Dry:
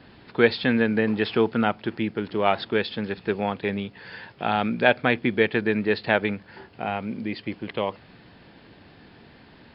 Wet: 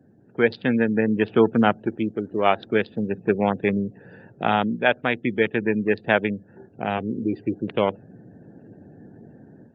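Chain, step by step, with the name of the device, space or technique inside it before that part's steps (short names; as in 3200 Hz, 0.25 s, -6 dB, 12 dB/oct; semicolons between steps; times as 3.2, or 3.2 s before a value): Wiener smoothing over 41 samples; 1.81–2.69 dynamic EQ 150 Hz, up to -7 dB, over -44 dBFS, Q 1.8; 4.76–5.25 low shelf 320 Hz -4 dB; 6.97–7.58 comb 2.6 ms, depth 43%; noise-suppressed video call (HPF 100 Hz 24 dB/oct; spectral gate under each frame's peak -30 dB strong; AGC gain up to 10 dB; gain -2.5 dB; Opus 24 kbps 48000 Hz)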